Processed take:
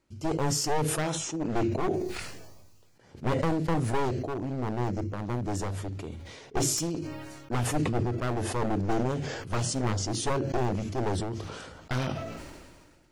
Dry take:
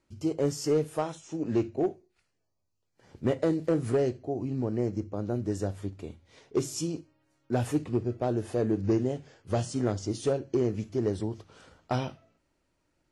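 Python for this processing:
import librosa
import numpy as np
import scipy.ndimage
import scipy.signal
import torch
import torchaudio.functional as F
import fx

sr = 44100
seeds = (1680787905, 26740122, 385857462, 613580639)

y = np.minimum(x, 2.0 * 10.0 ** (-29.5 / 20.0) - x)
y = fx.sustainer(y, sr, db_per_s=33.0)
y = F.gain(torch.from_numpy(y), 1.0).numpy()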